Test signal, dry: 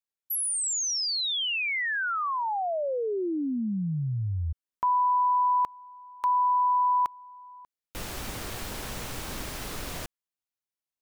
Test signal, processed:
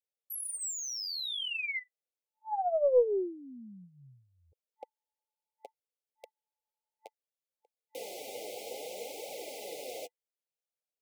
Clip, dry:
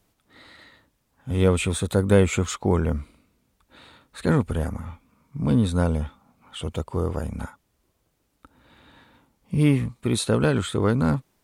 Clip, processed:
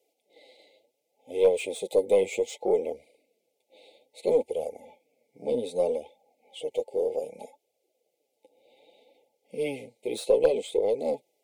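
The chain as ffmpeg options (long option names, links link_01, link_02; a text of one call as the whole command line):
ffmpeg -i in.wav -filter_complex "[0:a]afftfilt=real='re*(1-between(b*sr/4096,880,2000))':imag='im*(1-between(b*sr/4096,880,2000))':win_size=4096:overlap=0.75,acrossover=split=3000[link_01][link_02];[link_02]asoftclip=type=tanh:threshold=-28dB[link_03];[link_01][link_03]amix=inputs=2:normalize=0,flanger=delay=1.1:depth=9.2:regen=15:speed=0.64:shape=triangular,highpass=frequency=490:width_type=q:width=4.3,aeval=exprs='0.398*(cos(1*acos(clip(val(0)/0.398,-1,1)))-cos(1*PI/2))+0.0178*(cos(2*acos(clip(val(0)/0.398,-1,1)))-cos(2*PI/2))':channel_layout=same,volume=-3.5dB" out.wav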